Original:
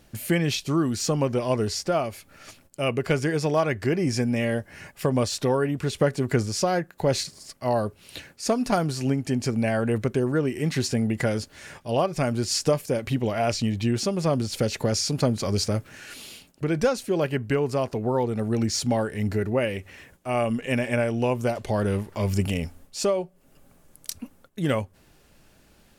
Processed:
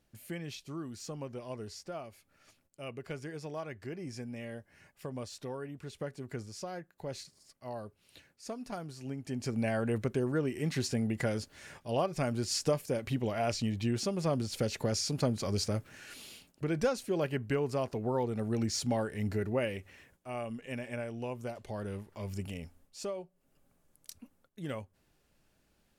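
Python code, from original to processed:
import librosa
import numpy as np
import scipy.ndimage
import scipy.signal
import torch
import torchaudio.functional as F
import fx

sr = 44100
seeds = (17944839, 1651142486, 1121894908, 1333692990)

y = fx.gain(x, sr, db=fx.line((9.0, -17.5), (9.59, -7.5), (19.66, -7.5), (20.44, -14.5)))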